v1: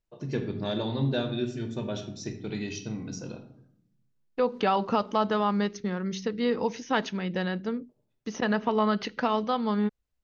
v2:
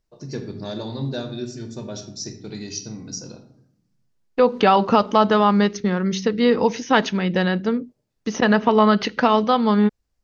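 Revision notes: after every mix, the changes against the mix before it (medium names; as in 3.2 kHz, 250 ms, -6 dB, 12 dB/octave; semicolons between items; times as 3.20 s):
first voice: add resonant high shelf 3.9 kHz +7 dB, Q 3; second voice +9.5 dB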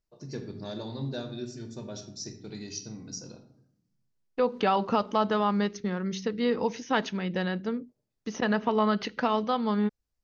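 first voice -7.0 dB; second voice -9.5 dB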